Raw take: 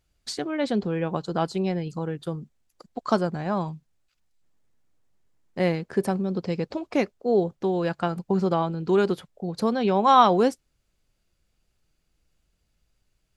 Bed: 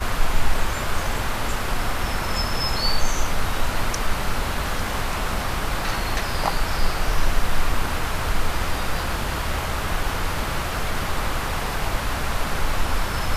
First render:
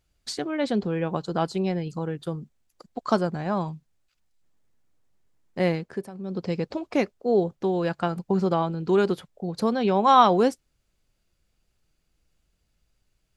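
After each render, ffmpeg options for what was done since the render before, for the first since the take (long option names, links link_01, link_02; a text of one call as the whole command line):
ffmpeg -i in.wav -filter_complex "[0:a]asplit=3[link_01][link_02][link_03];[link_01]atrim=end=6.1,asetpts=PTS-STARTPTS,afade=type=out:start_time=5.76:duration=0.34:silence=0.141254[link_04];[link_02]atrim=start=6.1:end=6.12,asetpts=PTS-STARTPTS,volume=-17dB[link_05];[link_03]atrim=start=6.12,asetpts=PTS-STARTPTS,afade=type=in:duration=0.34:silence=0.141254[link_06];[link_04][link_05][link_06]concat=n=3:v=0:a=1" out.wav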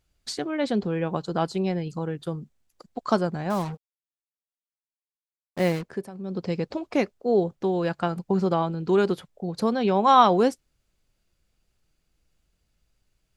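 ffmpeg -i in.wav -filter_complex "[0:a]asettb=1/sr,asplit=3[link_01][link_02][link_03];[link_01]atrim=end=3.504[link_04];[link_02]atrim=start=3.5:end=5.83,asetpts=PTS-STARTPTS,afade=type=in:duration=0.004:curve=qsin,afade=type=out:start_time=2.326:duration=0.004:curve=qsin,acrusher=bits=5:mix=0:aa=0.5[link_05];[link_03]atrim=start=5.826[link_06];[link_04][link_05]acrossfade=duration=0.004:curve1=hsin:curve2=qsin[link_07];[link_07][link_06]acrossfade=duration=0.004:curve1=qsin:curve2=hsin" out.wav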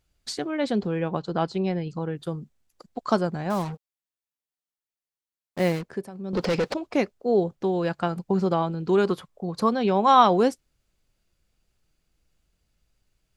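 ffmpeg -i in.wav -filter_complex "[0:a]asettb=1/sr,asplit=3[link_01][link_02][link_03];[link_01]atrim=end=1.094[link_04];[link_02]atrim=start=1.09:end=2.16,asetpts=PTS-STARTPTS,afade=type=in:duration=0.004:curve=qsin,afade=type=out:start_time=1.066:duration=0.004:curve=qsin,lowpass=5000[link_05];[link_03]atrim=start=2.156[link_06];[link_04][link_05]acrossfade=duration=0.004:curve1=hsin:curve2=qsin[link_07];[link_07][link_06]acrossfade=duration=0.004:curve1=qsin:curve2=hsin,asettb=1/sr,asplit=3[link_08][link_09][link_10];[link_08]atrim=end=6.334[link_11];[link_09]atrim=start=6.33:end=6.74,asetpts=PTS-STARTPTS,afade=type=in:duration=0.004:curve=qsin,afade=type=out:start_time=0.406:duration=0.004:curve=qsin,asplit=2[link_12][link_13];[link_13]highpass=frequency=720:poles=1,volume=26dB,asoftclip=type=tanh:threshold=-16dB[link_14];[link_12][link_14]amix=inputs=2:normalize=0,lowpass=frequency=4200:poles=1,volume=-6dB[link_15];[link_10]atrim=start=6.736[link_16];[link_11][link_15]acrossfade=duration=0.004:curve1=hsin:curve2=qsin[link_17];[link_17][link_16]acrossfade=duration=0.004:curve1=qsin:curve2=hsin,asettb=1/sr,asplit=3[link_18][link_19][link_20];[link_18]atrim=end=9.054[link_21];[link_19]atrim=start=9.05:end=9.69,asetpts=PTS-STARTPTS,afade=type=in:duration=0.004:curve=qsin,afade=type=out:start_time=0.636:duration=0.004:curve=qsin,equalizer=frequency=1100:width=4.5:gain=10.5[link_22];[link_20]atrim=start=9.686[link_23];[link_21][link_22]acrossfade=duration=0.004:curve1=hsin:curve2=qsin[link_24];[link_24][link_23]acrossfade=duration=0.004:curve1=qsin:curve2=hsin" out.wav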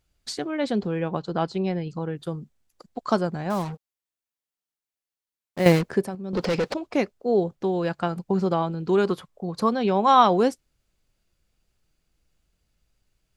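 ffmpeg -i in.wav -filter_complex "[0:a]asplit=3[link_01][link_02][link_03];[link_01]atrim=end=5.662[link_04];[link_02]atrim=start=5.658:end=6.152,asetpts=PTS-STARTPTS,volume=8.5dB[link_05];[link_03]atrim=start=6.148[link_06];[link_04][link_05]acrossfade=duration=0.004:curve1=hsin:curve2=hsin[link_07];[link_07][link_06]acrossfade=duration=0.004:curve1=hsin:curve2=hsin" out.wav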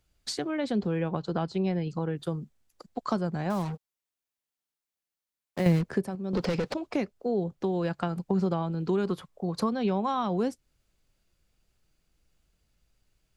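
ffmpeg -i in.wav -filter_complex "[0:a]acrossover=split=210[link_01][link_02];[link_02]acompressor=threshold=-28dB:ratio=5[link_03];[link_01][link_03]amix=inputs=2:normalize=0" out.wav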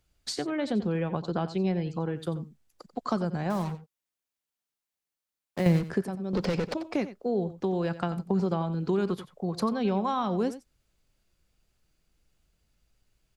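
ffmpeg -i in.wav -af "aecho=1:1:90:0.2" out.wav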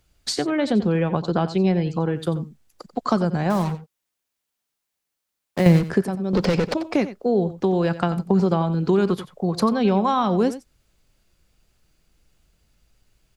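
ffmpeg -i in.wav -af "volume=8dB" out.wav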